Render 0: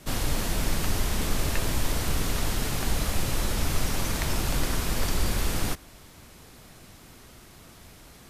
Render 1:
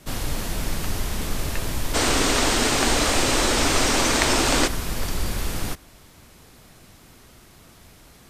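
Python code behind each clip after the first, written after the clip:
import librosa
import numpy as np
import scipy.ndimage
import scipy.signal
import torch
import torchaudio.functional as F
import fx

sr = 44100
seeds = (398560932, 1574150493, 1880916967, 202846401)

y = fx.spec_box(x, sr, start_s=1.95, length_s=2.72, low_hz=220.0, high_hz=9300.0, gain_db=12)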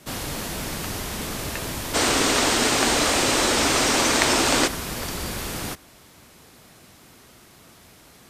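y = fx.highpass(x, sr, hz=140.0, slope=6)
y = y * librosa.db_to_amplitude(1.0)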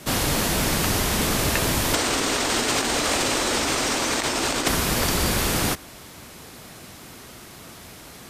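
y = fx.over_compress(x, sr, threshold_db=-24.0, ratio=-0.5)
y = y * librosa.db_to_amplitude(4.0)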